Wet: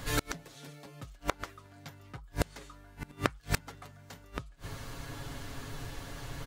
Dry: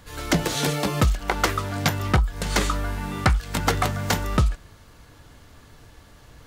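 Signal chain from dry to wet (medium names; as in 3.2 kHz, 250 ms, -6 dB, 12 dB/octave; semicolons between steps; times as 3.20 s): comb 7.3 ms, depth 56%; inverted gate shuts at -19 dBFS, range -33 dB; trim +6 dB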